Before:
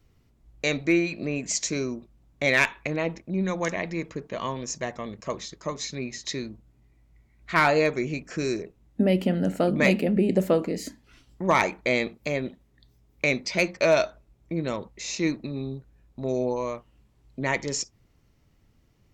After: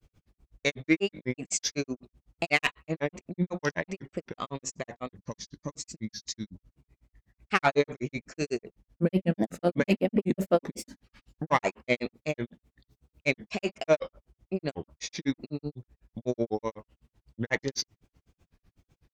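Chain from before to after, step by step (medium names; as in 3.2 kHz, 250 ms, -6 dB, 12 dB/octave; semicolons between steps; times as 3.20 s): Chebyshev shaper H 5 -27 dB, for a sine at -7.5 dBFS; time-frequency box 5.17–6.54 s, 330–4300 Hz -9 dB; granulator 93 ms, grains 8 per s, spray 15 ms, pitch spread up and down by 3 st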